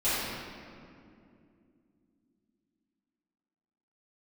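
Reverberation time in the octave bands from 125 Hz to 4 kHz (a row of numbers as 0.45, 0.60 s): 3.4, 4.2, 2.9, 2.2, 1.9, 1.4 s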